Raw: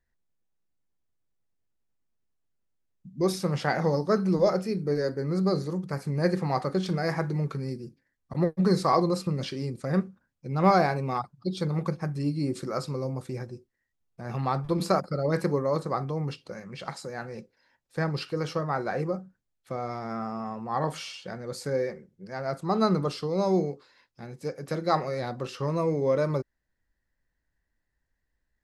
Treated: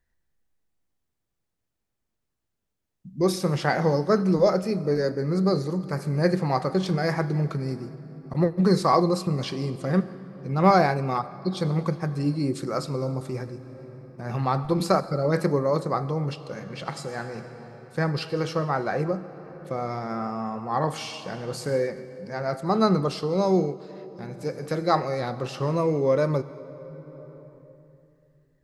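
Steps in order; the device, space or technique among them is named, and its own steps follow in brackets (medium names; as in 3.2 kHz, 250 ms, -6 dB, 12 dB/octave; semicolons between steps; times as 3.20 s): compressed reverb return (on a send at -3.5 dB: reverberation RT60 2.6 s, pre-delay 70 ms + compression 6:1, threshold -37 dBFS, peak gain reduction 19.5 dB); on the sum: trim +3 dB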